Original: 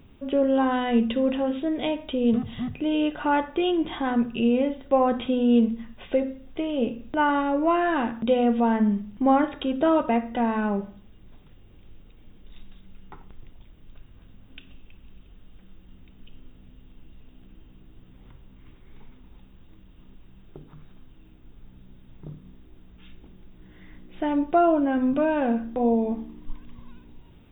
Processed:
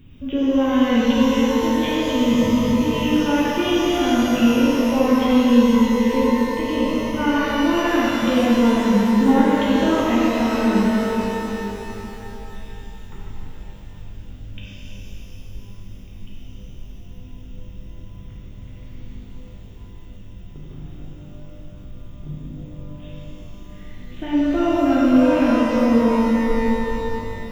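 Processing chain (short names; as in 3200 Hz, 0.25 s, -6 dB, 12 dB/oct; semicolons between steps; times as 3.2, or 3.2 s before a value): EQ curve 150 Hz 0 dB, 340 Hz -6 dB, 670 Hz -15 dB, 2800 Hz -3 dB; shimmer reverb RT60 3.5 s, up +12 st, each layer -8 dB, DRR -7 dB; gain +4.5 dB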